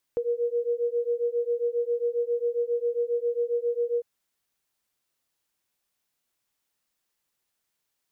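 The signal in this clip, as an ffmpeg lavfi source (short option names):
-f lavfi -i "aevalsrc='0.0447*(sin(2*PI*472*t)+sin(2*PI*479.4*t))':d=3.85:s=44100"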